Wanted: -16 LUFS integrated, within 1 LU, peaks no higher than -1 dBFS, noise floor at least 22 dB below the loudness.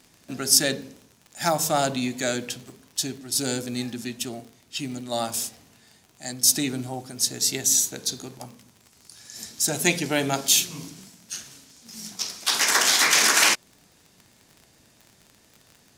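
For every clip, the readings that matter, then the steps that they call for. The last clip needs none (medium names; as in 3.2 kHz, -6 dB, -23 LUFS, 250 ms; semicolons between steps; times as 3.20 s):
tick rate 31 per s; loudness -22.5 LUFS; peak level -2.5 dBFS; loudness target -16.0 LUFS
-> de-click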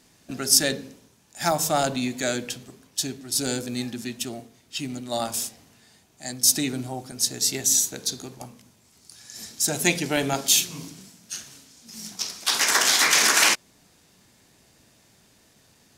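tick rate 0.25 per s; loudness -22.5 LUFS; peak level -2.5 dBFS; loudness target -16.0 LUFS
-> trim +6.5 dB; peak limiter -1 dBFS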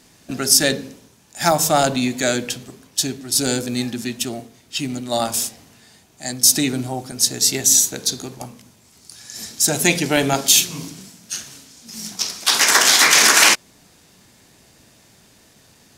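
loudness -16.5 LUFS; peak level -1.0 dBFS; noise floor -53 dBFS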